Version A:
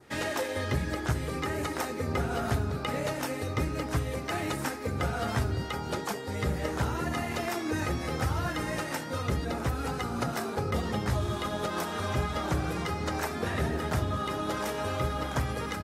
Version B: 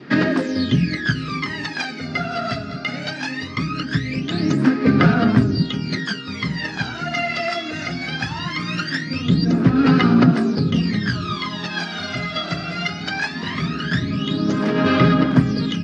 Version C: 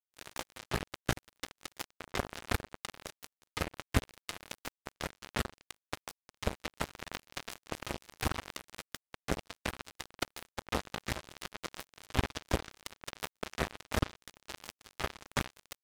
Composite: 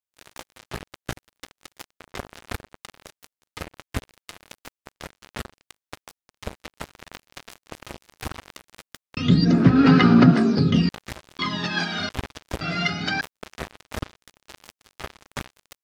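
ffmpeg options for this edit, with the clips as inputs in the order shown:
-filter_complex "[1:a]asplit=3[a][b][c];[2:a]asplit=4[d][e][f][g];[d]atrim=end=9.172[h];[a]atrim=start=9.168:end=10.892[i];[e]atrim=start=10.888:end=11.392[j];[b]atrim=start=11.388:end=12.092[k];[f]atrim=start=12.088:end=12.612[l];[c]atrim=start=12.608:end=13.212[m];[g]atrim=start=13.208[n];[h][i]acrossfade=d=0.004:c1=hsin:c2=hsin[o];[o][j]acrossfade=d=0.004:c1=hsin:c2=hsin[p];[p][k]acrossfade=d=0.004:c1=hsin:c2=hsin[q];[q][l]acrossfade=d=0.004:c1=hsin:c2=hsin[r];[r][m]acrossfade=d=0.004:c1=hsin:c2=hsin[s];[s][n]acrossfade=d=0.004:c1=hsin:c2=hsin"

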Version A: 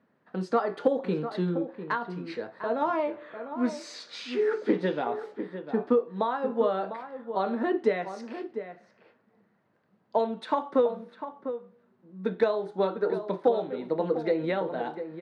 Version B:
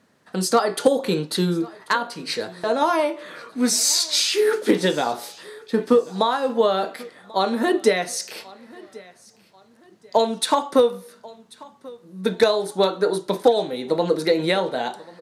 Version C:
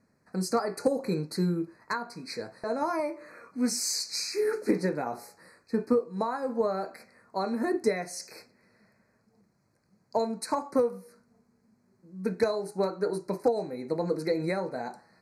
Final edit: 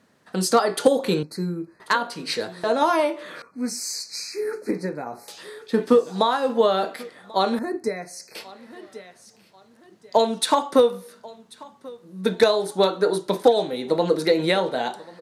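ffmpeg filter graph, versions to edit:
-filter_complex "[2:a]asplit=3[a][b][c];[1:a]asplit=4[d][e][f][g];[d]atrim=end=1.232[h];[a]atrim=start=1.228:end=1.802[i];[e]atrim=start=1.798:end=3.422[j];[b]atrim=start=3.418:end=5.282[k];[f]atrim=start=5.278:end=7.592[l];[c]atrim=start=7.588:end=8.352[m];[g]atrim=start=8.348[n];[h][i]acrossfade=d=0.004:c1=hsin:c2=hsin[o];[o][j]acrossfade=d=0.004:c1=hsin:c2=hsin[p];[p][k]acrossfade=d=0.004:c1=hsin:c2=hsin[q];[q][l]acrossfade=d=0.004:c1=hsin:c2=hsin[r];[r][m]acrossfade=d=0.004:c1=hsin:c2=hsin[s];[s][n]acrossfade=d=0.004:c1=hsin:c2=hsin"

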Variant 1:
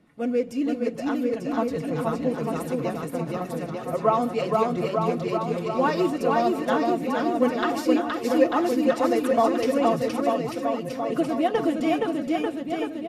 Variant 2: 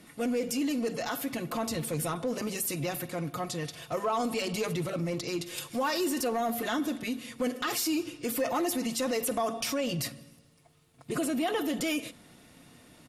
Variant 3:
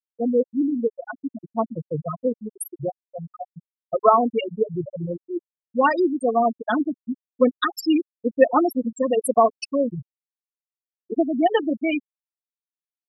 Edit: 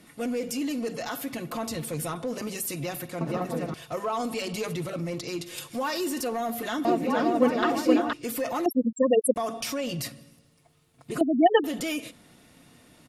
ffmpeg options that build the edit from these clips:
-filter_complex "[0:a]asplit=2[a][b];[2:a]asplit=2[c][d];[1:a]asplit=5[e][f][g][h][i];[e]atrim=end=3.212[j];[a]atrim=start=3.208:end=3.742[k];[f]atrim=start=3.738:end=6.852[l];[b]atrim=start=6.848:end=8.132[m];[g]atrim=start=8.128:end=8.662[n];[c]atrim=start=8.658:end=9.362[o];[h]atrim=start=9.358:end=11.212[p];[d]atrim=start=11.208:end=11.642[q];[i]atrim=start=11.638[r];[j][k]acrossfade=d=0.004:c1=hsin:c2=hsin[s];[s][l]acrossfade=d=0.004:c1=hsin:c2=hsin[t];[t][m]acrossfade=d=0.004:c1=hsin:c2=hsin[u];[u][n]acrossfade=d=0.004:c1=hsin:c2=hsin[v];[v][o]acrossfade=d=0.004:c1=hsin:c2=hsin[w];[w][p]acrossfade=d=0.004:c1=hsin:c2=hsin[x];[x][q]acrossfade=d=0.004:c1=hsin:c2=hsin[y];[y][r]acrossfade=d=0.004:c1=hsin:c2=hsin"

